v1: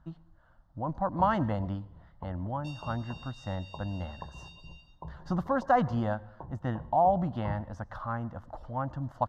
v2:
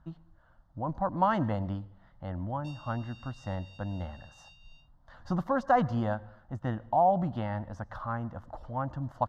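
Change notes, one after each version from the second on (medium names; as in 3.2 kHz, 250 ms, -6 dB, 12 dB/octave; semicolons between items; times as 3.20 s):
first sound: muted; second sound: send off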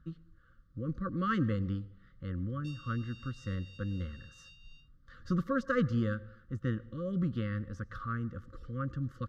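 master: add brick-wall FIR band-stop 550–1100 Hz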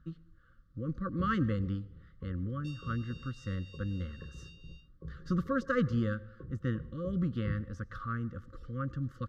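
first sound: unmuted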